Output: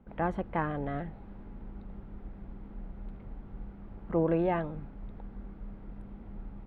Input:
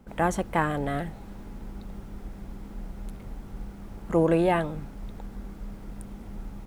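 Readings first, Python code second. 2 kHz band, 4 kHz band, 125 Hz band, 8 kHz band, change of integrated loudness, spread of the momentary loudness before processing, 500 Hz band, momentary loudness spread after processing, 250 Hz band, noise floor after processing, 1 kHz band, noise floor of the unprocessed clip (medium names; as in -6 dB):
-8.5 dB, under -10 dB, -5.0 dB, no reading, -7.0 dB, 19 LU, -5.5 dB, 19 LU, -5.0 dB, -48 dBFS, -6.5 dB, -44 dBFS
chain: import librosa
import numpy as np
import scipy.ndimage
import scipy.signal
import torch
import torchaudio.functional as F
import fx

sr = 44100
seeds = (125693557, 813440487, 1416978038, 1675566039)

y = fx.air_absorb(x, sr, metres=450.0)
y = y * librosa.db_to_amplitude(-4.5)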